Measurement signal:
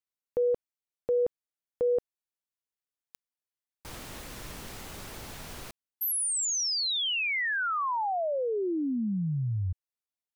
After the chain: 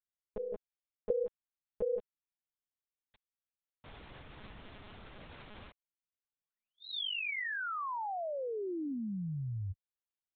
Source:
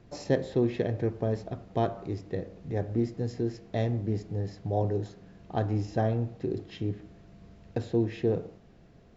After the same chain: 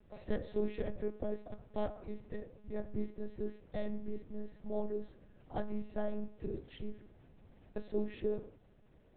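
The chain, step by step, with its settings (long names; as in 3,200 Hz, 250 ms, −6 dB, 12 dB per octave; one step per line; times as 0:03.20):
one-pitch LPC vocoder at 8 kHz 210 Hz
level −8 dB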